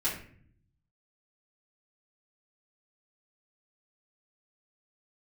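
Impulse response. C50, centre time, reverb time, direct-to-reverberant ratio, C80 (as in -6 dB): 5.5 dB, 32 ms, 0.55 s, -10.5 dB, 10.0 dB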